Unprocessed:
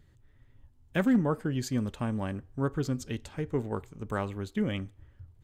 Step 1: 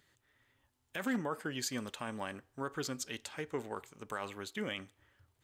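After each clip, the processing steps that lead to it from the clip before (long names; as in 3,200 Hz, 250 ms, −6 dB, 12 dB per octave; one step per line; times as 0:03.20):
high-pass filter 1,300 Hz 6 dB per octave
brickwall limiter −29.5 dBFS, peak gain reduction 10.5 dB
level +4.5 dB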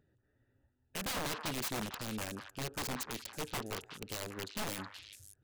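adaptive Wiener filter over 41 samples
wrap-around overflow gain 36 dB
echo through a band-pass that steps 185 ms, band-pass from 1,300 Hz, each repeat 1.4 octaves, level −3 dB
level +4.5 dB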